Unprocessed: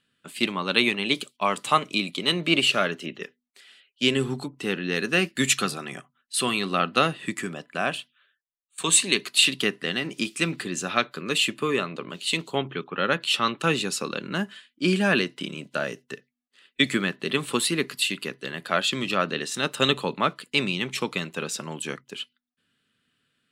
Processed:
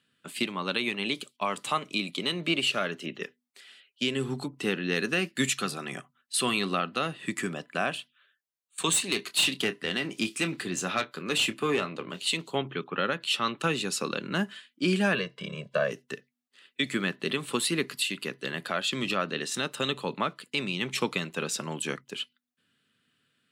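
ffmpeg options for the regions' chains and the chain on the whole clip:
-filter_complex "[0:a]asettb=1/sr,asplit=3[a][b][c];[a]atrim=end=8.934[d];[b]atrim=start=8.93:end=12.27,asetpts=PTS-STARTPTS,afade=t=in:d=0.004:c=qsin,afade=t=out:st=3.336:d=0.004:c=qsin,asplit=2[e][f];[f]adelay=27,volume=-12.5dB[g];[e][g]amix=inputs=2:normalize=0,atrim=end_sample=147294,aeval=exprs='(tanh(5.01*val(0)+0.35)-tanh(0.35))/5.01':c=same[h];[c]atrim=start=12.266[i];[d][h]acrossfade=d=0.004:c1=hsin:c2=qsin[j];[j][i]acrossfade=d=0.004:c1=qsin:c2=hsin,asettb=1/sr,asplit=3[k][l][m];[k]atrim=end=15.154[n];[l]atrim=start=15.15:end=15.91,asetpts=PTS-STARTPTS,afade=t=in:d=0.004:c=qsin,afade=t=out:st=0.756:d=0.004:c=qsin,lowpass=f=1.8k:p=1,bandreject=f=360:w=5.3,aecho=1:1:1.8:0.96,atrim=end_sample=33516[o];[m]atrim=start=15.906[p];[n][o]acrossfade=d=0.004:c1=hsin:c2=qsin[q];[q][p]acrossfade=d=0.004:c1=qsin:c2=hsin,highpass=f=78:w=0.5412,highpass=f=78:w=1.3066,alimiter=limit=-15dB:level=0:latency=1:release=448"

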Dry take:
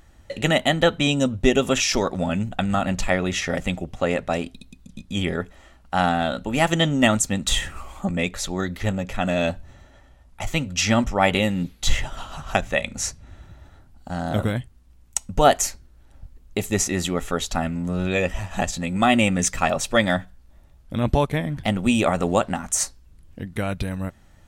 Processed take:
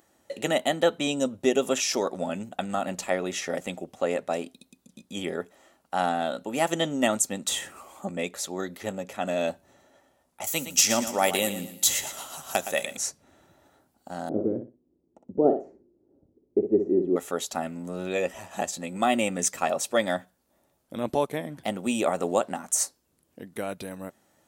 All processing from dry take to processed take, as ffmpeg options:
-filter_complex "[0:a]asettb=1/sr,asplit=3[a][b][c];[a]atrim=end=10.444[d];[b]atrim=start=10.44:end=12.97,asetpts=PTS-STARTPTS,afade=t=in:d=0.004:c=qsin,afade=t=out:st=2.526:d=0.004:c=qsin,aemphasis=mode=production:type=75fm,asoftclip=type=hard:threshold=-6.5dB,aecho=1:1:116|232|348|464:0.282|0.101|0.0365|0.0131,atrim=end_sample=111573[e];[c]atrim=start=12.966[f];[d][e]acrossfade=d=0.004:c1=hsin:c2=qsin[g];[g][f]acrossfade=d=0.004:c1=qsin:c2=hsin,asettb=1/sr,asplit=3[h][i][j];[h]atrim=end=14.294[k];[i]atrim=start=14.29:end=17.16,asetpts=PTS-STARTPTS,afade=t=in:d=0.004:c=qsin,afade=t=out:st=2.866:d=0.004:c=qsin,lowpass=f=370:t=q:w=3.5,aecho=1:1:60|120|180:0.398|0.0916|0.0211,atrim=end_sample=126567[l];[j]atrim=start=17.156[m];[k][l]acrossfade=d=0.004:c1=hsin:c2=qsin[n];[n][m]acrossfade=d=0.004:c1=qsin:c2=hsin,highpass=410,equalizer=f=2.2k:w=0.31:g=-12,volume=3.5dB"

